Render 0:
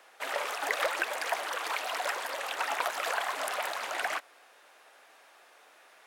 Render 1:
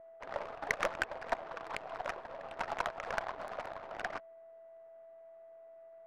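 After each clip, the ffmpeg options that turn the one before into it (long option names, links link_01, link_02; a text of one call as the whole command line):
ffmpeg -i in.wav -af "aeval=exprs='val(0)+0.01*sin(2*PI*660*n/s)':channel_layout=same,aeval=exprs='0.251*(cos(1*acos(clip(val(0)/0.251,-1,1)))-cos(1*PI/2))+0.0224*(cos(2*acos(clip(val(0)/0.251,-1,1)))-cos(2*PI/2))+0.00178*(cos(4*acos(clip(val(0)/0.251,-1,1)))-cos(4*PI/2))+0.00398*(cos(6*acos(clip(val(0)/0.251,-1,1)))-cos(6*PI/2))+0.0178*(cos(7*acos(clip(val(0)/0.251,-1,1)))-cos(7*PI/2))':channel_layout=same,adynamicsmooth=sensitivity=2:basefreq=570,volume=-1dB" out.wav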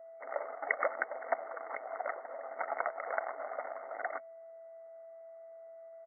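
ffmpeg -i in.wav -af "afftfilt=real='re*between(b*sr/4096,240,2200)':imag='im*between(b*sr/4096,240,2200)':win_size=4096:overlap=0.75,aecho=1:1:1.5:0.51" out.wav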